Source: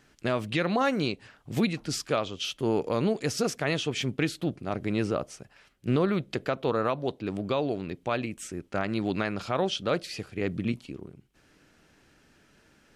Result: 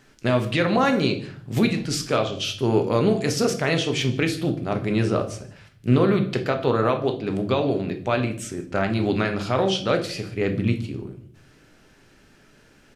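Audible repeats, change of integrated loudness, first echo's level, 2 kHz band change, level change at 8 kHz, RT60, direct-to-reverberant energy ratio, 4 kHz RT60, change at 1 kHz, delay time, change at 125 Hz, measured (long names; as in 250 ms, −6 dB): 1, +6.5 dB, −23.0 dB, +5.5 dB, +5.0 dB, 0.55 s, 5.0 dB, 0.45 s, +5.5 dB, 152 ms, +8.5 dB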